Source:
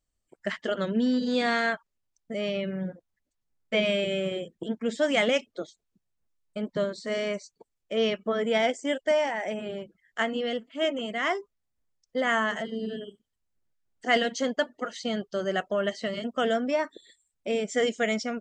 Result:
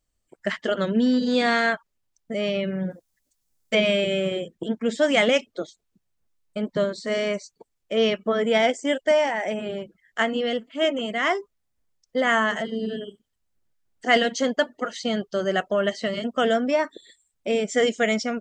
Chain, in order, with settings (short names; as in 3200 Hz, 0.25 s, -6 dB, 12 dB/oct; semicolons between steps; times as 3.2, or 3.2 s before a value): 2.9–3.75 tone controls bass -1 dB, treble +12 dB; gain +4.5 dB